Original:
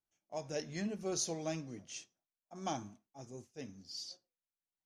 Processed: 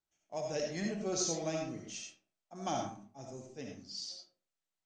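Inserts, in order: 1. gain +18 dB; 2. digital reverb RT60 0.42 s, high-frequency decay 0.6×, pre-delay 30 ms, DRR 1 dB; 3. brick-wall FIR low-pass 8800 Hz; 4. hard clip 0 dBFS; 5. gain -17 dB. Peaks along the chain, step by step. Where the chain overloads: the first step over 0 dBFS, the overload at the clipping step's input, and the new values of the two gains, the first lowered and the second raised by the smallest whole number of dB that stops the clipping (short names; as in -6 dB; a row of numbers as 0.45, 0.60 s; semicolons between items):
-5.5, -4.0, -3.5, -3.5, -20.5 dBFS; no overload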